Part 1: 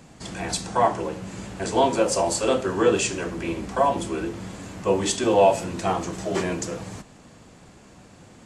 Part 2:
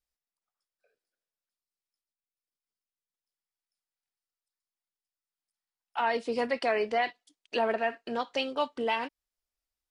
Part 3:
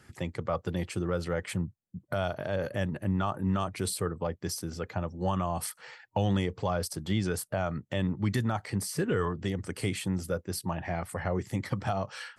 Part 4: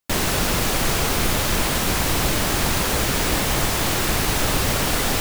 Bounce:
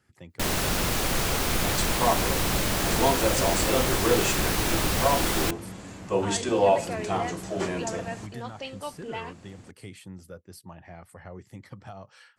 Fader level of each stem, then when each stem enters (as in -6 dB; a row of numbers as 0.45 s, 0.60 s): -4.0 dB, -7.0 dB, -12.0 dB, -5.0 dB; 1.25 s, 0.25 s, 0.00 s, 0.30 s